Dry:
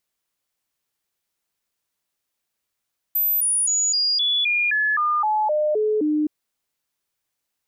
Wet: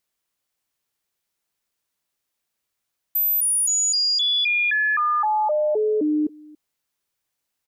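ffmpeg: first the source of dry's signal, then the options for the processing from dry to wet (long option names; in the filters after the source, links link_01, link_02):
-f lavfi -i "aevalsrc='0.133*clip(min(mod(t,0.26),0.26-mod(t,0.26))/0.005,0,1)*sin(2*PI*13700*pow(2,-floor(t/0.26)/2)*mod(t,0.26))':duration=3.12:sample_rate=44100"
-af "aecho=1:1:281:0.0668"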